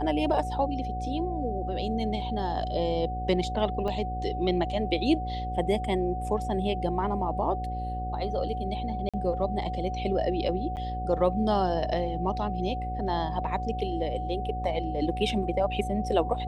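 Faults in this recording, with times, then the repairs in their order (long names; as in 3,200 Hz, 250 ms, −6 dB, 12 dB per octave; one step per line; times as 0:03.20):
mains buzz 60 Hz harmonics 10 −34 dBFS
whistle 740 Hz −33 dBFS
0:03.88: drop-out 2.6 ms
0:09.09–0:09.14: drop-out 46 ms
0:10.76–0:10.77: drop-out 9 ms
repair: hum removal 60 Hz, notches 10
notch filter 740 Hz, Q 30
repair the gap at 0:03.88, 2.6 ms
repair the gap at 0:09.09, 46 ms
repair the gap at 0:10.76, 9 ms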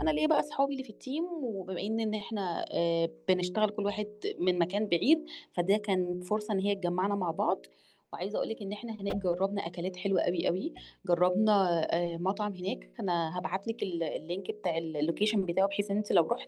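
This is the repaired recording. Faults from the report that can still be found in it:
none of them is left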